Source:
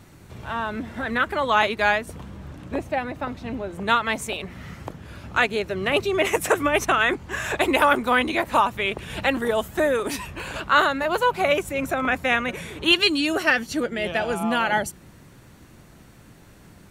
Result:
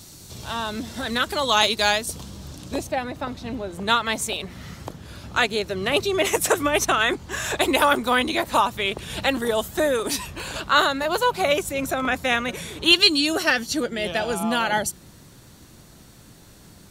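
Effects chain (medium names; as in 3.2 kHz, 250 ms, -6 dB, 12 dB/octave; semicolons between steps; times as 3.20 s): resonant high shelf 3.1 kHz +14 dB, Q 1.5, from 2.87 s +6 dB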